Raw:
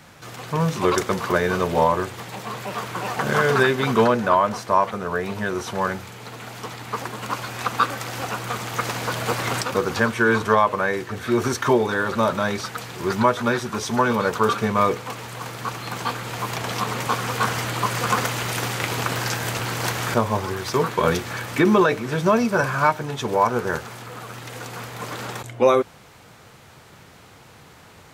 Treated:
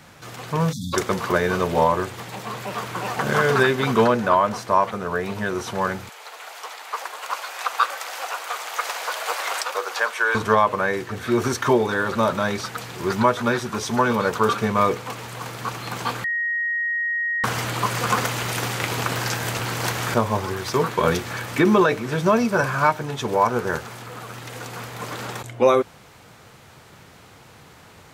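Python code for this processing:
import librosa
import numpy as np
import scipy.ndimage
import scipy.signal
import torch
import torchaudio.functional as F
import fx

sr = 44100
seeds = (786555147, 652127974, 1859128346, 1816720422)

y = fx.spec_erase(x, sr, start_s=0.72, length_s=0.22, low_hz=270.0, high_hz=3300.0)
y = fx.highpass(y, sr, hz=560.0, slope=24, at=(6.09, 10.35))
y = fx.edit(y, sr, fx.bleep(start_s=16.24, length_s=1.2, hz=1880.0, db=-21.0), tone=tone)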